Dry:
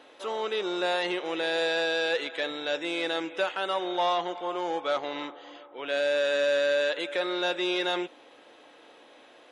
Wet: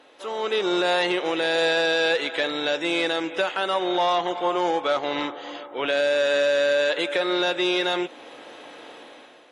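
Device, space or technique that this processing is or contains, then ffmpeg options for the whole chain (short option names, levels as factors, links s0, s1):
low-bitrate web radio: -af "dynaudnorm=f=160:g=7:m=3.35,alimiter=limit=0.224:level=0:latency=1:release=316" -ar 48000 -c:a aac -b:a 48k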